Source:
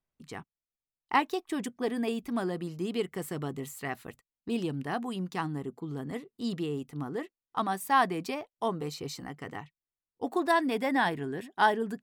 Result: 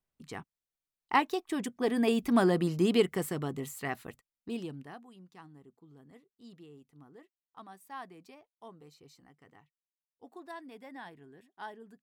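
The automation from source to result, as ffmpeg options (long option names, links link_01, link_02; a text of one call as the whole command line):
ffmpeg -i in.wav -af "volume=7dB,afade=type=in:start_time=1.73:duration=0.67:silence=0.421697,afade=type=out:start_time=2.9:duration=0.49:silence=0.446684,afade=type=out:start_time=3.93:duration=0.79:silence=0.375837,afade=type=out:start_time=4.72:duration=0.31:silence=0.281838" out.wav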